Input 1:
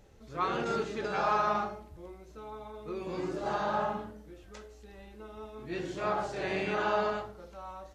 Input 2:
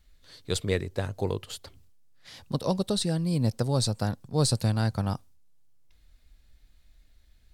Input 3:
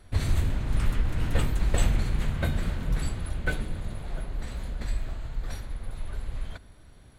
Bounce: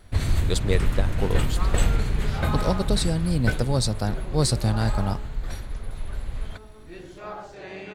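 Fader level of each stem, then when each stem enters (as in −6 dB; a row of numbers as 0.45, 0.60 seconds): −5.5, +2.0, +2.5 decibels; 1.20, 0.00, 0.00 seconds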